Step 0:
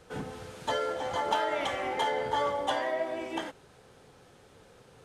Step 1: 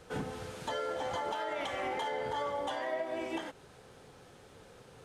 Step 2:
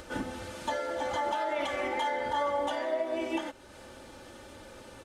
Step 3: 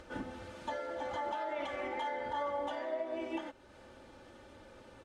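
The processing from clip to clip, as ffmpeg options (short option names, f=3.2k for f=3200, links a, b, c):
-af "alimiter=level_in=3.5dB:limit=-24dB:level=0:latency=1:release=237,volume=-3.5dB,volume=1dB"
-af "aecho=1:1:3.4:0.77,acompressor=mode=upward:threshold=-43dB:ratio=2.5,volume=1.5dB"
-af "aemphasis=mode=reproduction:type=50kf,volume=-6dB"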